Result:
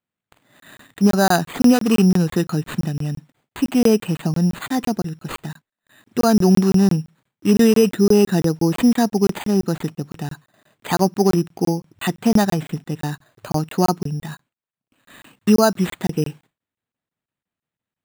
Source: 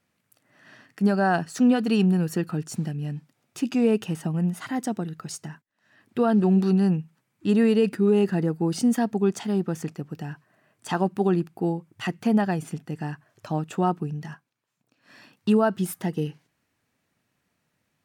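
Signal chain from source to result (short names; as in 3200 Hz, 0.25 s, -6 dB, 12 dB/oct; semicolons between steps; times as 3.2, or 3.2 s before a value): gate with hold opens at -54 dBFS; careless resampling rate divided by 8×, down none, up hold; crackling interface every 0.17 s, samples 1024, zero, from 0.6; gain +6.5 dB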